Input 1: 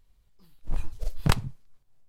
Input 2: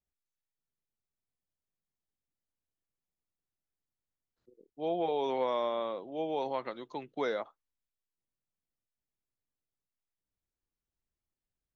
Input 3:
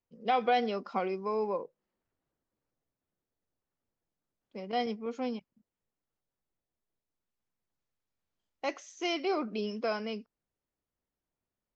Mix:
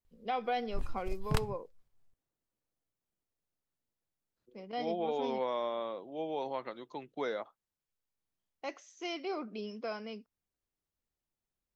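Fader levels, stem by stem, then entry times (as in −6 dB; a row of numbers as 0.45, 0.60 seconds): −9.0, −3.0, −6.5 decibels; 0.05, 0.00, 0.00 seconds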